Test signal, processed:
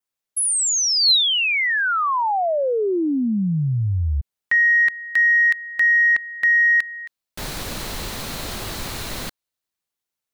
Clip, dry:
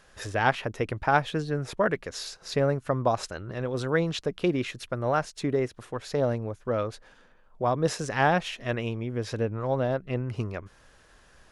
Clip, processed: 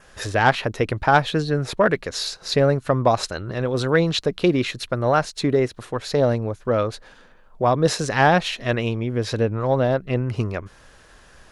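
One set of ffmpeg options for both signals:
-af "adynamicequalizer=threshold=0.00178:dfrequency=4100:dqfactor=4.7:tfrequency=4100:tqfactor=4.7:attack=5:release=100:ratio=0.375:range=3.5:mode=boostabove:tftype=bell,acontrast=88"

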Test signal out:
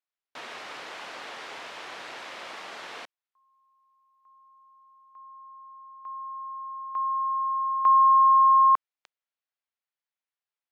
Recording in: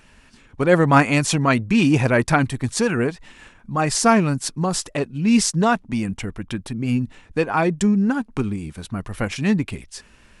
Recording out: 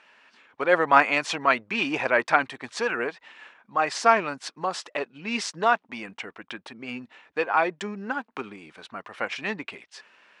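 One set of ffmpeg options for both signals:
-af "highpass=610,lowpass=3400"

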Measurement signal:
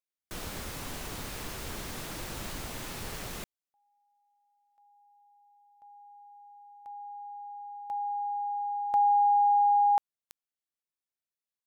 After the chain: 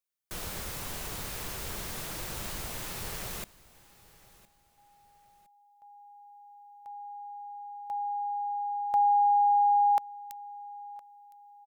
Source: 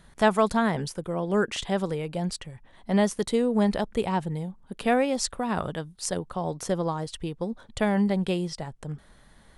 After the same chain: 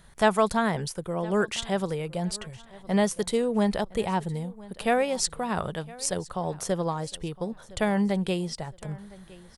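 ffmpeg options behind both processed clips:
-af "crystalizer=i=0.5:c=0,equalizer=f=270:t=o:w=0.43:g=-6.5,aecho=1:1:1012|2024:0.0891|0.0285"

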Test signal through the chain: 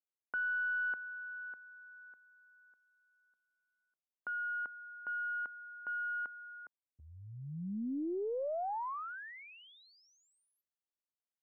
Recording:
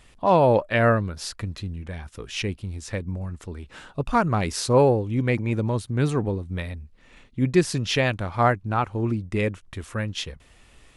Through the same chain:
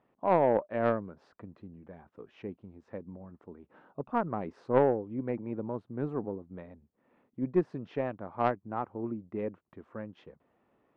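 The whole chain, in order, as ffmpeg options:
-af "asuperpass=centerf=450:order=4:qfactor=0.52,aeval=exprs='0.501*(cos(1*acos(clip(val(0)/0.501,-1,1)))-cos(1*PI/2))+0.0891*(cos(3*acos(clip(val(0)/0.501,-1,1)))-cos(3*PI/2))+0.00398*(cos(4*acos(clip(val(0)/0.501,-1,1)))-cos(4*PI/2))+0.01*(cos(5*acos(clip(val(0)/0.501,-1,1)))-cos(5*PI/2))+0.00562*(cos(6*acos(clip(val(0)/0.501,-1,1)))-cos(6*PI/2))':c=same,volume=0.668"

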